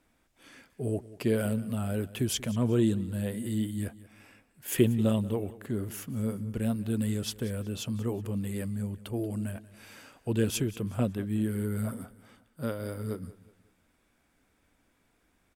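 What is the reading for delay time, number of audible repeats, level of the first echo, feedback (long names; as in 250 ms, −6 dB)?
185 ms, 2, −18.5 dB, 38%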